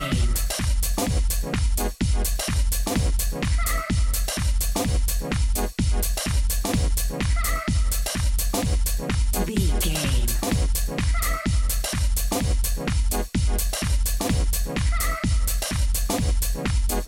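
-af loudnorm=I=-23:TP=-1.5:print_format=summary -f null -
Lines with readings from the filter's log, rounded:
Input Integrated:    -24.4 LUFS
Input True Peak:     -11.8 dBTP
Input LRA:             0.3 LU
Input Threshold:     -34.4 LUFS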